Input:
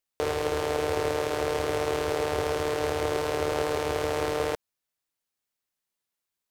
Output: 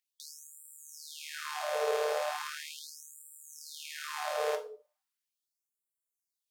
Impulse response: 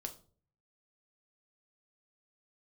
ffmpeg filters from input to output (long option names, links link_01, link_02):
-filter_complex "[0:a]aeval=exprs='val(0)+0.00501*sin(2*PI*430*n/s)':channel_layout=same[link_01];[1:a]atrim=start_sample=2205[link_02];[link_01][link_02]afir=irnorm=-1:irlink=0,afftfilt=real='re*gte(b*sr/1024,390*pow(7300/390,0.5+0.5*sin(2*PI*0.38*pts/sr)))':imag='im*gte(b*sr/1024,390*pow(7300/390,0.5+0.5*sin(2*PI*0.38*pts/sr)))':win_size=1024:overlap=0.75"